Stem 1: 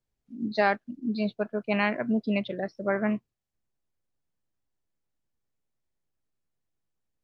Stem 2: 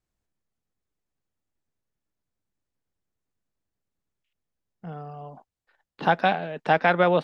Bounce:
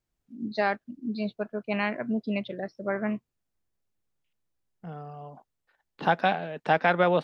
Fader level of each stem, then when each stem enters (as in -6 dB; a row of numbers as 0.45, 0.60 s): -2.5, -2.5 dB; 0.00, 0.00 s